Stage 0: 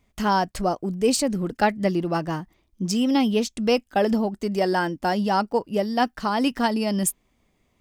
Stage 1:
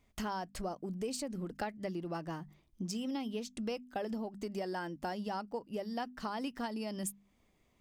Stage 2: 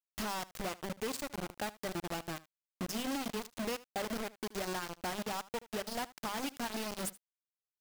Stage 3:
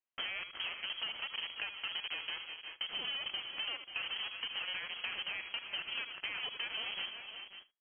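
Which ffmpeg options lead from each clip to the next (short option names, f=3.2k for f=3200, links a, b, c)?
-af "bandreject=f=50:t=h:w=6,bandreject=f=100:t=h:w=6,bandreject=f=150:t=h:w=6,bandreject=f=200:t=h:w=6,bandreject=f=250:t=h:w=6,acompressor=threshold=-33dB:ratio=4,volume=-4.5dB"
-af "acrusher=bits=5:mix=0:aa=0.000001,aecho=1:1:76:0.106,volume=-1.5dB"
-af "lowpass=f=2.8k:t=q:w=0.5098,lowpass=f=2.8k:t=q:w=0.6013,lowpass=f=2.8k:t=q:w=0.9,lowpass=f=2.8k:t=q:w=2.563,afreqshift=-3300,aecho=1:1:77|352|382|537:0.211|0.188|0.15|0.178,acompressor=threshold=-39dB:ratio=6,volume=3dB"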